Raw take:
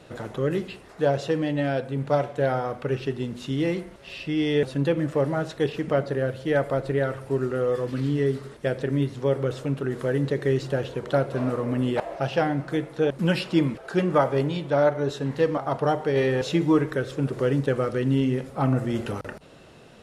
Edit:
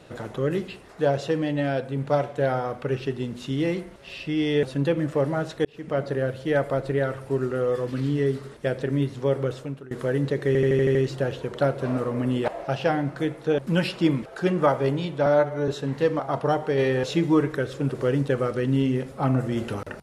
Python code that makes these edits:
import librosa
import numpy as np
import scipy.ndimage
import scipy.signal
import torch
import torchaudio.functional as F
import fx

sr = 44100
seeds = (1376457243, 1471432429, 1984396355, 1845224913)

y = fx.edit(x, sr, fx.fade_in_span(start_s=5.65, length_s=0.42),
    fx.fade_out_to(start_s=9.44, length_s=0.47, floor_db=-21.5),
    fx.stutter(start_s=10.47, slice_s=0.08, count=7),
    fx.stretch_span(start_s=14.78, length_s=0.28, factor=1.5), tone=tone)